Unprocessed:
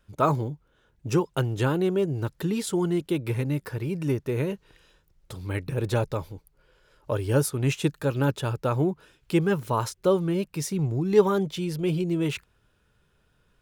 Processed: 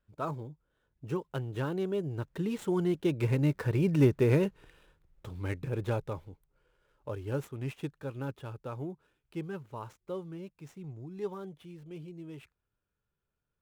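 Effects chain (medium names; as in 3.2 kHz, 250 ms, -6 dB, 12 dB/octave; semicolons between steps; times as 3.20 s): median filter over 9 samples; Doppler pass-by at 4.05 s, 7 m/s, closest 4.5 m; trim +3 dB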